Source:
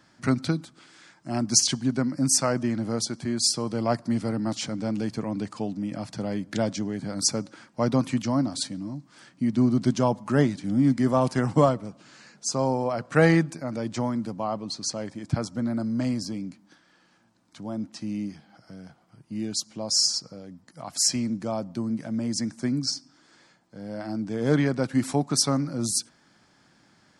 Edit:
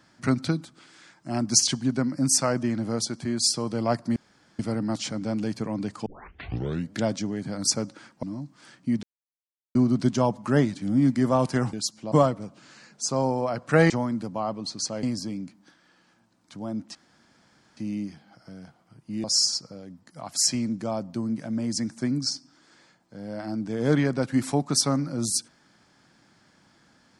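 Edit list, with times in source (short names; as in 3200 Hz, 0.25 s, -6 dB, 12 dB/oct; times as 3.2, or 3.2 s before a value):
4.16 insert room tone 0.43 s
5.63 tape start 0.87 s
7.8–8.77 cut
9.57 insert silence 0.72 s
13.33–13.94 cut
15.07–16.07 cut
17.99 insert room tone 0.82 s
19.46–19.85 move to 11.55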